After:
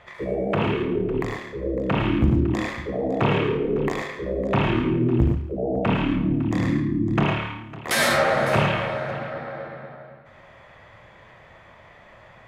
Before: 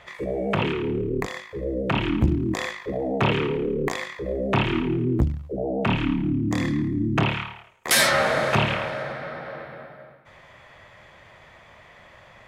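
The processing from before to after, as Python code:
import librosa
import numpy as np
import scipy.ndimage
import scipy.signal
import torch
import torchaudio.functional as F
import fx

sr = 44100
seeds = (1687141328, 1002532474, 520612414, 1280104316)

p1 = fx.high_shelf(x, sr, hz=2800.0, db=-8.5)
y = p1 + fx.echo_multitap(p1, sr, ms=(42, 74, 103, 112, 141, 555), db=(-10.5, -8.5, -7.0, -8.0, -13.0, -16.5), dry=0)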